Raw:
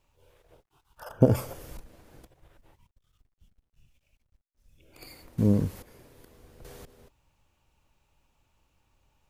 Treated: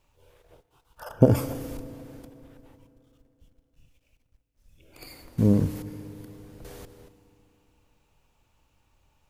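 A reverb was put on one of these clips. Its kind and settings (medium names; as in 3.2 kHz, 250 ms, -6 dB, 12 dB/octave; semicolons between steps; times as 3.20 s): FDN reverb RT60 3.3 s, high-frequency decay 0.75×, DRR 14 dB; trim +2.5 dB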